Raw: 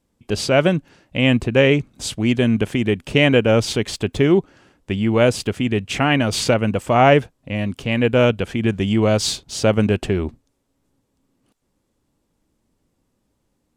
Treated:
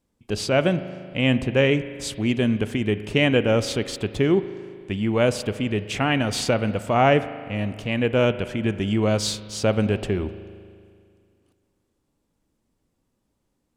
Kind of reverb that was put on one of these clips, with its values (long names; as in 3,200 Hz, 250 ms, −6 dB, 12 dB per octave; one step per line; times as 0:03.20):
spring reverb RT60 2.2 s, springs 38 ms, chirp 75 ms, DRR 12.5 dB
level −4.5 dB